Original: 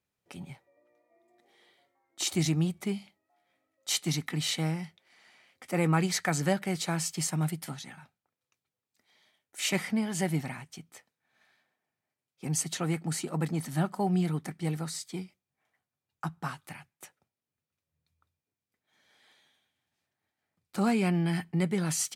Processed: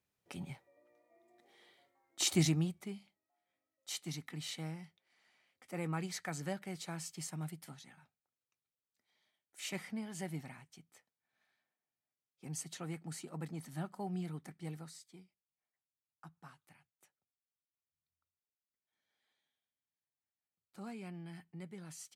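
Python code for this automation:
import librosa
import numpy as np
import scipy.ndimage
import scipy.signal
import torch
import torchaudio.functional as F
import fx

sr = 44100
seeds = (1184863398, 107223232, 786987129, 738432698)

y = fx.gain(x, sr, db=fx.line((2.41, -1.5), (2.89, -12.5), (14.73, -12.5), (15.18, -20.0)))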